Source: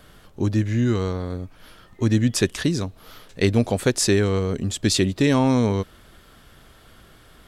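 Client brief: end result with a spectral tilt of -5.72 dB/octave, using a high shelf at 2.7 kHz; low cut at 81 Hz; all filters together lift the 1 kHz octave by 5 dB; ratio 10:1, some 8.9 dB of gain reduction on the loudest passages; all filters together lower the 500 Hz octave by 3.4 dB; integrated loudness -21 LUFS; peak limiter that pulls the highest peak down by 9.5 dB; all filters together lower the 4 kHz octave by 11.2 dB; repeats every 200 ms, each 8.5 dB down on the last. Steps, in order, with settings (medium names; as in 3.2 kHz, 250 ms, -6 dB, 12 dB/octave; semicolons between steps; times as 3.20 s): high-pass 81 Hz; peaking EQ 500 Hz -6 dB; peaking EQ 1 kHz +9 dB; treble shelf 2.7 kHz -7 dB; peaking EQ 4 kHz -8.5 dB; compression 10:1, threshold -24 dBFS; peak limiter -22.5 dBFS; feedback delay 200 ms, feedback 38%, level -8.5 dB; trim +12.5 dB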